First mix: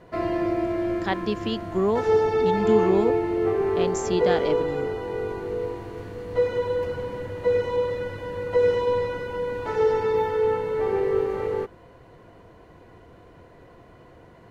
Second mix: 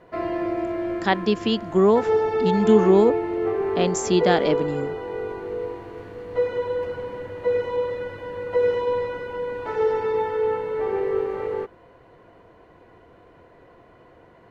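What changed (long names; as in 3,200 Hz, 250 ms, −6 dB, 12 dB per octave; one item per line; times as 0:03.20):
speech +6.0 dB
background: add bass and treble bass −6 dB, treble −8 dB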